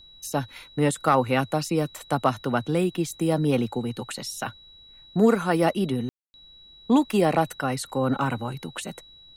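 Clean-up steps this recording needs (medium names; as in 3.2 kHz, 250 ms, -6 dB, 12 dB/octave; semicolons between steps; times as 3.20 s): clip repair -9 dBFS; band-stop 3.9 kHz, Q 30; room tone fill 6.09–6.34 s; expander -43 dBFS, range -21 dB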